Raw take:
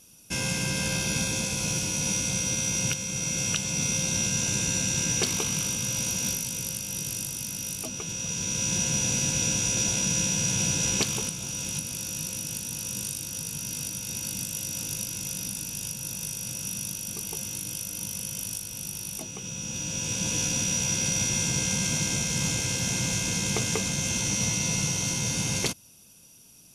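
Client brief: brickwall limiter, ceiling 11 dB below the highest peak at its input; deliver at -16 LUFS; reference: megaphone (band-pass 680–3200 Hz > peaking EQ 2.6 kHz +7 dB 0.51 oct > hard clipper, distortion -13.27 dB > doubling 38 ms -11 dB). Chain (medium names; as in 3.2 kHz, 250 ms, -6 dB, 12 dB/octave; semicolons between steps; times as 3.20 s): peak limiter -21 dBFS; band-pass 680–3200 Hz; peaking EQ 2.6 kHz +7 dB 0.51 oct; hard clipper -33.5 dBFS; doubling 38 ms -11 dB; trim +19.5 dB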